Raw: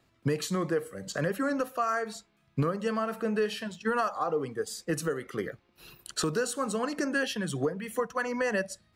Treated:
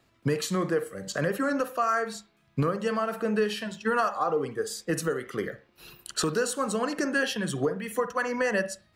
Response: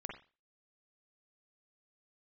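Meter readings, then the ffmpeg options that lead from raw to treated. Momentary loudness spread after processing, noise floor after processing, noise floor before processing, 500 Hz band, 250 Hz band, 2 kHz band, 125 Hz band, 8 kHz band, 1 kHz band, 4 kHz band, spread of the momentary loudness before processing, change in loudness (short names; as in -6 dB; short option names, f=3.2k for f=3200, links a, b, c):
8 LU, -66 dBFS, -69 dBFS, +2.5 dB, +2.0 dB, +3.0 dB, +1.5 dB, +2.5 dB, +3.0 dB, +3.0 dB, 8 LU, +2.5 dB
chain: -filter_complex "[0:a]asplit=2[a][b];[1:a]atrim=start_sample=2205,lowshelf=f=180:g=-12[c];[b][c]afir=irnorm=-1:irlink=0,volume=-3.5dB[d];[a][d]amix=inputs=2:normalize=0"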